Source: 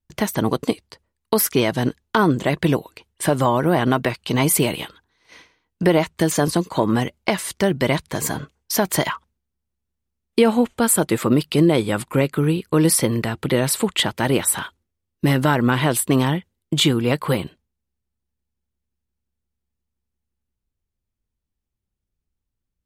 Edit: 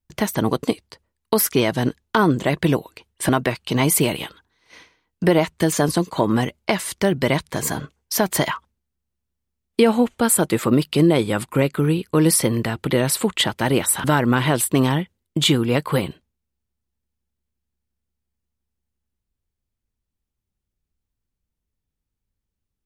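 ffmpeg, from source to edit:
-filter_complex "[0:a]asplit=3[s0][s1][s2];[s0]atrim=end=3.292[s3];[s1]atrim=start=3.878:end=14.632[s4];[s2]atrim=start=15.398[s5];[s3][s4]acrossfade=d=0.004:c1=hsin:c2=hsin[s6];[s6][s5]acrossfade=d=0.004:c1=hsin:c2=hsin"

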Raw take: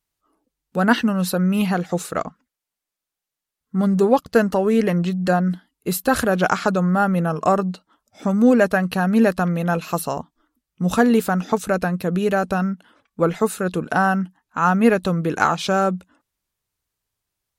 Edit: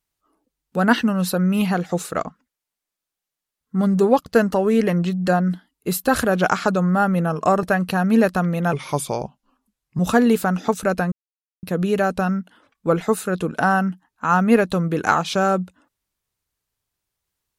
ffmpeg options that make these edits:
-filter_complex "[0:a]asplit=5[s0][s1][s2][s3][s4];[s0]atrim=end=7.632[s5];[s1]atrim=start=8.658:end=9.764[s6];[s2]atrim=start=9.76:end=10.83,asetpts=PTS-STARTPTS,asetrate=37485,aresample=44100,atrim=end_sample=55514,asetpts=PTS-STARTPTS[s7];[s3]atrim=start=10.826:end=11.96,asetpts=PTS-STARTPTS,afade=t=out:st=1.13:d=0.004:c=hsin,apad=pad_dur=0.51[s8];[s4]atrim=start=11.96,asetpts=PTS-STARTPTS,afade=t=in:d=0.004:c=hsin[s9];[s5][s6]acrossfade=d=0.004:c1=hsin:c2=hsin[s10];[s10][s7]acrossfade=d=0.004:c1=hsin:c2=hsin[s11];[s8][s9]concat=n=2:v=0:a=1[s12];[s11][s12]acrossfade=d=0.004:c1=hsin:c2=hsin"

